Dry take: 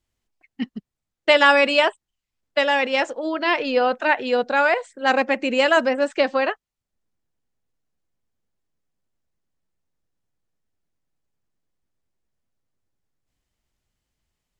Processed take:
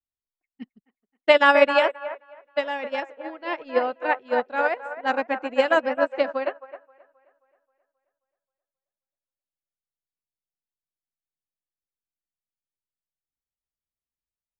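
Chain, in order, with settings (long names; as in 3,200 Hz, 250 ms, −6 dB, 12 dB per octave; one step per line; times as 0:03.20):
high-shelf EQ 3,000 Hz −10.5 dB
on a send: delay with a band-pass on its return 266 ms, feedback 51%, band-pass 960 Hz, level −4 dB
on the sum: expander for the loud parts 2.5 to 1, over −30 dBFS
level +2.5 dB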